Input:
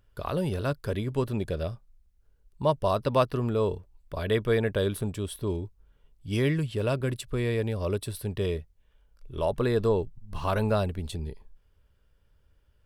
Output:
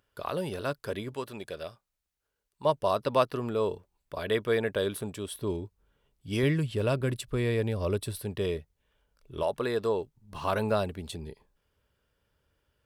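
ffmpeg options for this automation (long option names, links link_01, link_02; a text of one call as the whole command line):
ffmpeg -i in.wav -af "asetnsamples=nb_out_samples=441:pad=0,asendcmd='1.14 highpass f 910;2.65 highpass f 300;5.33 highpass f 150;6.43 highpass f 45;8.19 highpass f 150;9.43 highpass f 470;10.19 highpass f 210',highpass=frequency=360:poles=1" out.wav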